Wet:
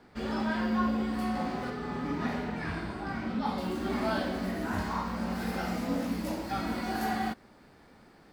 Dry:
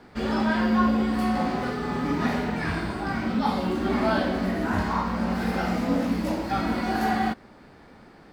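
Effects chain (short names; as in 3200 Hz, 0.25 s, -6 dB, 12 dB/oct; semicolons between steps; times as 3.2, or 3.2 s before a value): high shelf 6100 Hz +2 dB, from 1.7 s -4 dB, from 3.58 s +9 dB; gain -7 dB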